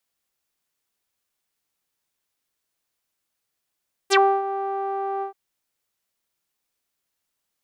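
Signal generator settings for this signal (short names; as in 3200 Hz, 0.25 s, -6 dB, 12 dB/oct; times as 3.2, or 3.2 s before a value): synth note saw G4 12 dB/oct, low-pass 930 Hz, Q 5.5, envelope 4 oct, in 0.08 s, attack 30 ms, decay 0.29 s, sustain -13 dB, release 0.11 s, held 1.12 s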